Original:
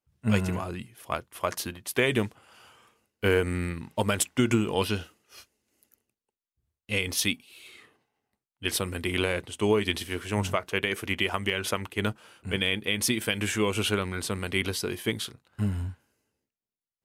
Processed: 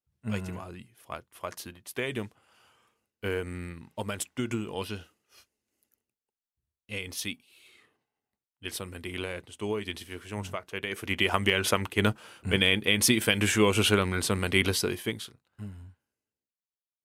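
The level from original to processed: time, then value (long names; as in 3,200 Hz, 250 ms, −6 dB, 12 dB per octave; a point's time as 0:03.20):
0:10.75 −8 dB
0:11.34 +3.5 dB
0:14.81 +3.5 dB
0:15.21 −6 dB
0:15.77 −14.5 dB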